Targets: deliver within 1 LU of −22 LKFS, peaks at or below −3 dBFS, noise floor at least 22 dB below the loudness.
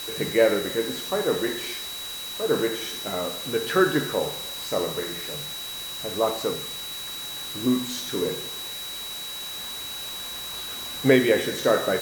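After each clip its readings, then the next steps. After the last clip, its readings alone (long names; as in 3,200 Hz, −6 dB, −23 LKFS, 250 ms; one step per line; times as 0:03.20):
interfering tone 3,900 Hz; level of the tone −34 dBFS; background noise floor −35 dBFS; target noise floor −48 dBFS; integrated loudness −26.0 LKFS; sample peak −4.5 dBFS; target loudness −22.0 LKFS
→ notch filter 3,900 Hz, Q 30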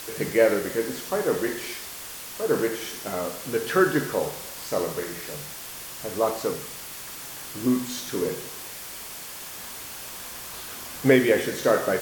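interfering tone none found; background noise floor −39 dBFS; target noise floor −49 dBFS
→ noise reduction from a noise print 10 dB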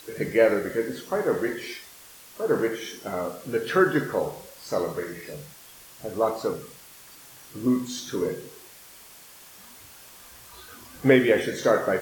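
background noise floor −49 dBFS; integrated loudness −25.5 LKFS; sample peak −5.0 dBFS; target loudness −22.0 LKFS
→ level +3.5 dB
brickwall limiter −3 dBFS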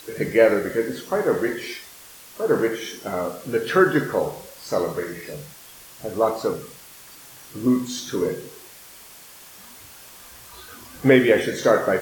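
integrated loudness −22.0 LKFS; sample peak −3.0 dBFS; background noise floor −45 dBFS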